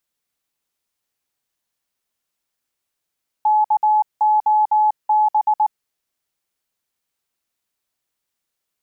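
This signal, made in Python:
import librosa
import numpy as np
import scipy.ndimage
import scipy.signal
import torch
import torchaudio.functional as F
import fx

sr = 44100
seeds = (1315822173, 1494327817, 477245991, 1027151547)

y = fx.morse(sr, text='KOB', wpm=19, hz=853.0, level_db=-12.0)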